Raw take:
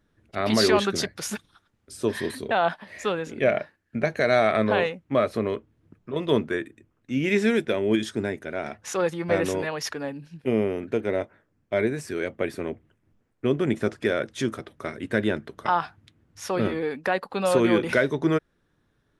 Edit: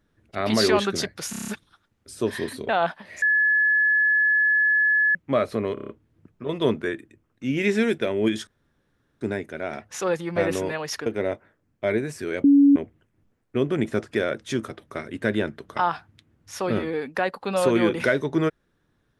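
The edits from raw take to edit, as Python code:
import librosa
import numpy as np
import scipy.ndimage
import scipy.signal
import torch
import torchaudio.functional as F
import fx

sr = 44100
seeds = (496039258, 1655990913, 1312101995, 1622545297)

y = fx.edit(x, sr, fx.stutter(start_s=1.3, slice_s=0.03, count=7),
    fx.bleep(start_s=3.04, length_s=1.93, hz=1710.0, db=-16.5),
    fx.stutter(start_s=5.56, slice_s=0.03, count=6),
    fx.insert_room_tone(at_s=8.14, length_s=0.74),
    fx.cut(start_s=9.99, length_s=0.96),
    fx.bleep(start_s=12.33, length_s=0.32, hz=282.0, db=-11.0), tone=tone)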